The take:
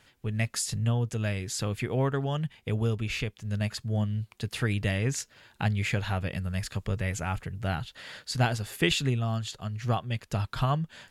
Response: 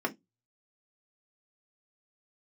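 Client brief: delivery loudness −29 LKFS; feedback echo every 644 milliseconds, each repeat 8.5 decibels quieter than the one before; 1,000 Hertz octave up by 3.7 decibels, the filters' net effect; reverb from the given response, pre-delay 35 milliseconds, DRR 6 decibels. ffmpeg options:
-filter_complex "[0:a]equalizer=frequency=1000:width_type=o:gain=5,aecho=1:1:644|1288|1932|2576:0.376|0.143|0.0543|0.0206,asplit=2[link_01][link_02];[1:a]atrim=start_sample=2205,adelay=35[link_03];[link_02][link_03]afir=irnorm=-1:irlink=0,volume=-13.5dB[link_04];[link_01][link_04]amix=inputs=2:normalize=0,volume=-0.5dB"

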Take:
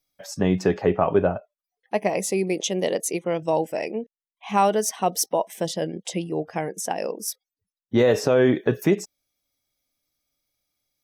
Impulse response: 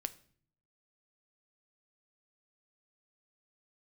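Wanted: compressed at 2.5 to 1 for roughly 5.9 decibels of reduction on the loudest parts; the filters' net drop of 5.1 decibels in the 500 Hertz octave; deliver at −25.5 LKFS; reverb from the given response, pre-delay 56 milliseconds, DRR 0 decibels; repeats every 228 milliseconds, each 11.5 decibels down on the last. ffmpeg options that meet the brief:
-filter_complex "[0:a]equalizer=frequency=500:width_type=o:gain=-6.5,acompressor=threshold=-25dB:ratio=2.5,aecho=1:1:228|456|684:0.266|0.0718|0.0194,asplit=2[link_01][link_02];[1:a]atrim=start_sample=2205,adelay=56[link_03];[link_02][link_03]afir=irnorm=-1:irlink=0,volume=1dB[link_04];[link_01][link_04]amix=inputs=2:normalize=0,volume=1.5dB"

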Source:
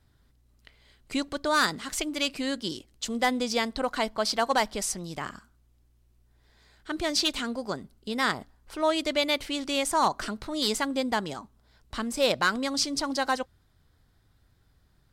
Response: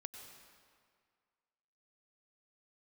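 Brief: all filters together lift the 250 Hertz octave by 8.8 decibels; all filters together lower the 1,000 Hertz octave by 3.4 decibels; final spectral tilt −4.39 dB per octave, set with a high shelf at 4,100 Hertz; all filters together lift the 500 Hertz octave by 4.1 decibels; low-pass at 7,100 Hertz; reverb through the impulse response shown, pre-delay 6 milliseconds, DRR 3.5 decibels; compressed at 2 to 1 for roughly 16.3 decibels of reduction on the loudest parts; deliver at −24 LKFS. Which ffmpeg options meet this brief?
-filter_complex "[0:a]lowpass=7100,equalizer=frequency=250:width_type=o:gain=9,equalizer=frequency=500:width_type=o:gain=5,equalizer=frequency=1000:width_type=o:gain=-6.5,highshelf=frequency=4100:gain=-3.5,acompressor=threshold=-48dB:ratio=2,asplit=2[link_01][link_02];[1:a]atrim=start_sample=2205,adelay=6[link_03];[link_02][link_03]afir=irnorm=-1:irlink=0,volume=0.5dB[link_04];[link_01][link_04]amix=inputs=2:normalize=0,volume=15.5dB"

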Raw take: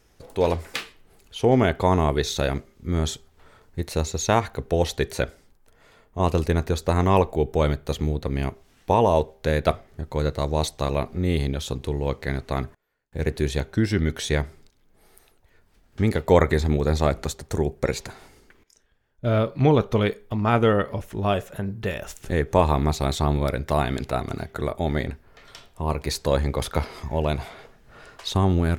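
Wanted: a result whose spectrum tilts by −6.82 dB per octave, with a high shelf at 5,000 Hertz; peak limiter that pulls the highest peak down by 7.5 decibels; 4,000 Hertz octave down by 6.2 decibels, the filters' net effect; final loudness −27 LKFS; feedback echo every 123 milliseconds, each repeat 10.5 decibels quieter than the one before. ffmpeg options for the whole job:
ffmpeg -i in.wav -af "equalizer=frequency=4000:width_type=o:gain=-4,highshelf=frequency=5000:gain=-8,alimiter=limit=-12dB:level=0:latency=1,aecho=1:1:123|246|369:0.299|0.0896|0.0269,volume=-1dB" out.wav

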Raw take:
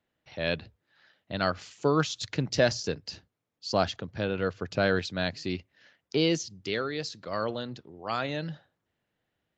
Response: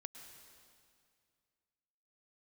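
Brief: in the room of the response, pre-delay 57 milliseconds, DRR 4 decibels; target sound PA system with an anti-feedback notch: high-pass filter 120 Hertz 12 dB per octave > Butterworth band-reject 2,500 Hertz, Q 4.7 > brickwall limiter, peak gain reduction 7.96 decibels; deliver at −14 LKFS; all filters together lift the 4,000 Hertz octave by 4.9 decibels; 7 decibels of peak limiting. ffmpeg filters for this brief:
-filter_complex "[0:a]equalizer=frequency=4000:width_type=o:gain=6,alimiter=limit=-15.5dB:level=0:latency=1,asplit=2[link_01][link_02];[1:a]atrim=start_sample=2205,adelay=57[link_03];[link_02][link_03]afir=irnorm=-1:irlink=0,volume=1dB[link_04];[link_01][link_04]amix=inputs=2:normalize=0,highpass=120,asuperstop=centerf=2500:order=8:qfactor=4.7,volume=17.5dB,alimiter=limit=-2dB:level=0:latency=1"

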